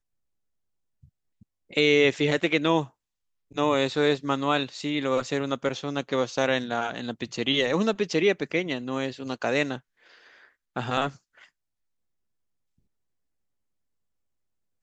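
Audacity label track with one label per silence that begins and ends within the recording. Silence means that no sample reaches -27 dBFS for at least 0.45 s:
2.820000	3.570000	silence
9.750000	10.760000	silence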